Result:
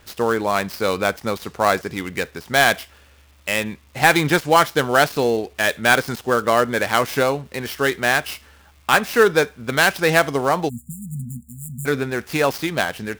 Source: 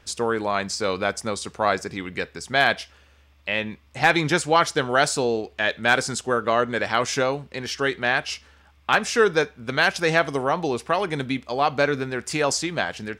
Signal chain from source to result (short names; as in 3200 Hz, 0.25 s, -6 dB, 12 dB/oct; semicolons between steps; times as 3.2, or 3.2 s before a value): switching dead time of 0.073 ms; crackle 580/s -50 dBFS; spectral delete 10.69–11.86, 240–6900 Hz; gain +4 dB